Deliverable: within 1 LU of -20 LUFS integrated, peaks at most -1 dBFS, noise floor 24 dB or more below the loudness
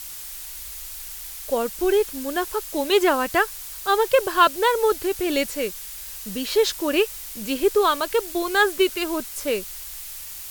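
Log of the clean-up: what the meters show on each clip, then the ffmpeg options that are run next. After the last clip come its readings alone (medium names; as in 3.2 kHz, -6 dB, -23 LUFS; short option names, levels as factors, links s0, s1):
noise floor -36 dBFS; noise floor target -47 dBFS; loudness -23.0 LUFS; peak level -4.0 dBFS; loudness target -20.0 LUFS
-> -af "afftdn=nr=11:nf=-36"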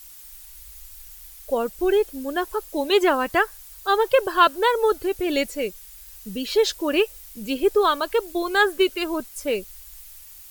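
noise floor -44 dBFS; noise floor target -47 dBFS
-> -af "afftdn=nr=6:nf=-44"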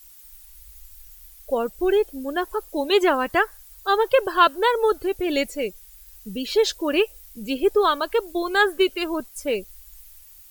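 noise floor -48 dBFS; loudness -22.5 LUFS; peak level -4.5 dBFS; loudness target -20.0 LUFS
-> -af "volume=1.33"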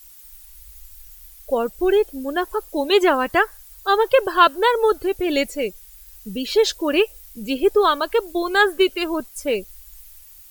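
loudness -20.0 LUFS; peak level -2.0 dBFS; noise floor -45 dBFS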